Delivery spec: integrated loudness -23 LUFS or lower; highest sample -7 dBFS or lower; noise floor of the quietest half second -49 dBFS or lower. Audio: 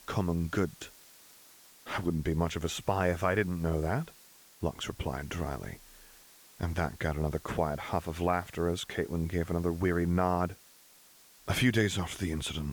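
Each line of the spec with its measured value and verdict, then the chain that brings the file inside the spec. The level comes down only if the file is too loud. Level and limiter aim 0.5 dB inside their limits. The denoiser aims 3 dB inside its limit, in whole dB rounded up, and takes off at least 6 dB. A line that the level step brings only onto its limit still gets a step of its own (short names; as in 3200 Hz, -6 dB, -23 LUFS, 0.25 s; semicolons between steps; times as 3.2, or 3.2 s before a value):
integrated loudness -32.0 LUFS: OK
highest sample -14.0 dBFS: OK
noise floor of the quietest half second -58 dBFS: OK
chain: none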